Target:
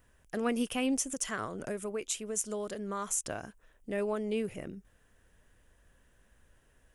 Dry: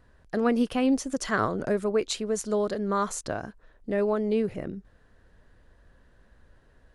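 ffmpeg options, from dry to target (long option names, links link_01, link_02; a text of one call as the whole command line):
ffmpeg -i in.wav -filter_complex "[0:a]highshelf=frequency=2800:gain=10,asettb=1/sr,asplit=3[link_01][link_02][link_03];[link_01]atrim=end=1.044[link_04];[link_02]atrim=start=1.04:end=3.26,asetpts=PTS-STARTPTS,afade=type=in:duration=0.004:curve=qsin,afade=type=out:start_time=2.216:duration=0.004:curve=qsin,acompressor=threshold=-28dB:ratio=2[link_05];[link_03]atrim=start=3.256[link_06];[link_04][link_05]acrossfade=duration=0.004:curve1=hsin:curve2=qsin[link_07];[link_07][link_06]acrossfade=duration=0.004:curve1=qsin:curve2=hsin,aexciter=amount=1.3:drive=2.9:freq=2300,volume=-7.5dB" out.wav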